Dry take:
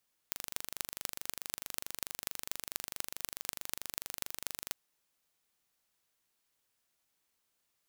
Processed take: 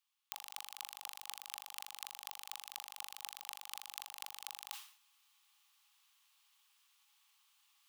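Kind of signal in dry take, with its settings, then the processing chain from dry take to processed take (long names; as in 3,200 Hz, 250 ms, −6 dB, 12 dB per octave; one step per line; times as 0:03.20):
impulse train 24.6 per second, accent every 6, −6 dBFS 4.43 s
reversed playback
upward compression, threshold −52 dBFS
reversed playback
Chebyshev high-pass with heavy ripple 800 Hz, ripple 9 dB
level that may fall only so fast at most 110 dB per second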